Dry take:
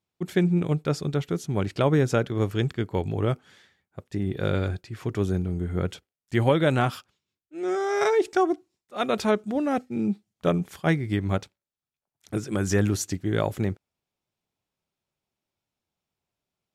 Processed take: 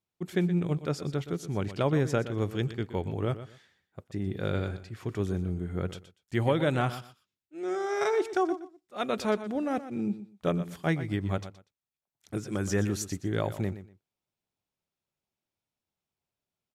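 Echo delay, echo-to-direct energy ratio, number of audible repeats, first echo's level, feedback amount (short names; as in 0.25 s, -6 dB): 0.121 s, -13.0 dB, 2, -13.0 dB, 21%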